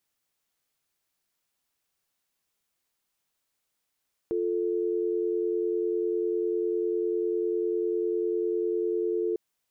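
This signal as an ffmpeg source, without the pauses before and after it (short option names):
-f lavfi -i "aevalsrc='0.0422*(sin(2*PI*350*t)+sin(2*PI*440*t))':d=5.05:s=44100"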